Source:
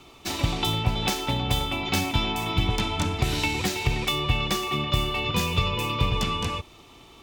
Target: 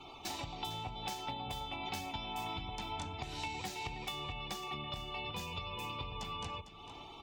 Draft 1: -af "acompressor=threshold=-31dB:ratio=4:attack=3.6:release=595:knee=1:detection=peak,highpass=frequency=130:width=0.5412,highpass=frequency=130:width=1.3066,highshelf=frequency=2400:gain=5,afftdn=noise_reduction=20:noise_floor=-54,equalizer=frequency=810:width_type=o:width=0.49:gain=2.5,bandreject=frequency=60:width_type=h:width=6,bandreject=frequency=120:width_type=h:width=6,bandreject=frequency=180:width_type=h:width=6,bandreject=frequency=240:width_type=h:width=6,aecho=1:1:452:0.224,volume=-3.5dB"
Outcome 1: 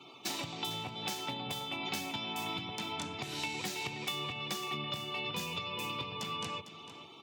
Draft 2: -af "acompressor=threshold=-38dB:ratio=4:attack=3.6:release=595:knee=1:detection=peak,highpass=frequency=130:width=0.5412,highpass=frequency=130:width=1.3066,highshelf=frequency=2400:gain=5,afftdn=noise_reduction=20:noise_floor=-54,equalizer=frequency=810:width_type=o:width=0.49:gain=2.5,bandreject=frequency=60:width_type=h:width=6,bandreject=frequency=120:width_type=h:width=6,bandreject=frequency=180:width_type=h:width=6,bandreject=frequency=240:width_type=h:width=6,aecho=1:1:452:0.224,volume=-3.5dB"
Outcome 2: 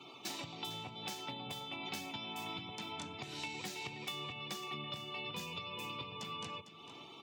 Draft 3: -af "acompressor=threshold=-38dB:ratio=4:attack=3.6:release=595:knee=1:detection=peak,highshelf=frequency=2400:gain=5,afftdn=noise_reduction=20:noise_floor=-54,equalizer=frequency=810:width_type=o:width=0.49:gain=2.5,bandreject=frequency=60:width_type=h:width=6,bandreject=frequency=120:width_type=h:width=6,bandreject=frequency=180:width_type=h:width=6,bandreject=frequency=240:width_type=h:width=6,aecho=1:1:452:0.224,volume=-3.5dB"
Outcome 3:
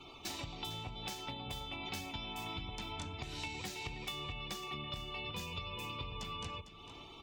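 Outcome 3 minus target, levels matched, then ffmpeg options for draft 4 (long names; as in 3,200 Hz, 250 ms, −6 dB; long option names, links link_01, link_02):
1,000 Hz band −4.0 dB
-af "acompressor=threshold=-38dB:ratio=4:attack=3.6:release=595:knee=1:detection=peak,highshelf=frequency=2400:gain=5,afftdn=noise_reduction=20:noise_floor=-54,equalizer=frequency=810:width_type=o:width=0.49:gain=11,bandreject=frequency=60:width_type=h:width=6,bandreject=frequency=120:width_type=h:width=6,bandreject=frequency=180:width_type=h:width=6,bandreject=frequency=240:width_type=h:width=6,aecho=1:1:452:0.224,volume=-3.5dB"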